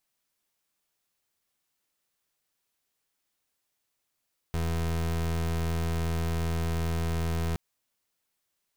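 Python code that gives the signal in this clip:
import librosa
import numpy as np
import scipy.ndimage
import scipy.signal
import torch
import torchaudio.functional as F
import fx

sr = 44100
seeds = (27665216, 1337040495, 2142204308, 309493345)

y = fx.pulse(sr, length_s=3.02, hz=82.6, level_db=-28.5, duty_pct=29)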